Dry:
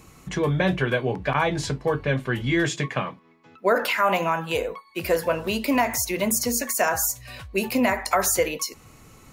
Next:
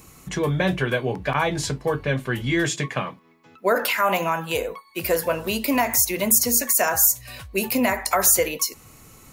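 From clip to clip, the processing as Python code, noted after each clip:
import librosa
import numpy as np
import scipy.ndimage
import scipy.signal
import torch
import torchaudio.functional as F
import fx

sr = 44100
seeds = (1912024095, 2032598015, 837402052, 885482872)

y = fx.high_shelf(x, sr, hz=8000.0, db=11.5)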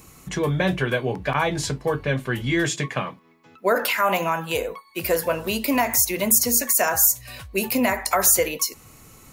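y = x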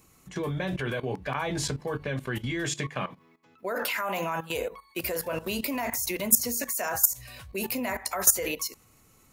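y = fx.hum_notches(x, sr, base_hz=50, count=3)
y = fx.level_steps(y, sr, step_db=15)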